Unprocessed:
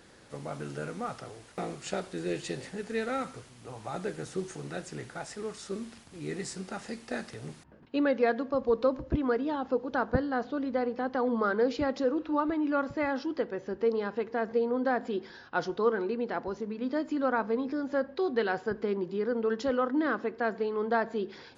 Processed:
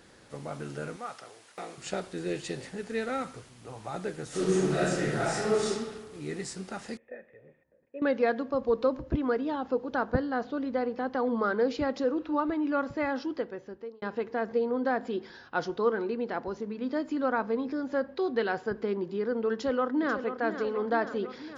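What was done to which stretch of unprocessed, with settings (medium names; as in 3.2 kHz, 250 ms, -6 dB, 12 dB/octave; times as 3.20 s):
0.96–1.78 s: high-pass 780 Hz 6 dB/octave
4.28–5.68 s: reverb throw, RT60 1.4 s, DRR -11 dB
6.97–8.02 s: cascade formant filter e
13.27–14.02 s: fade out
19.53–20.40 s: echo throw 490 ms, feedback 70%, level -9.5 dB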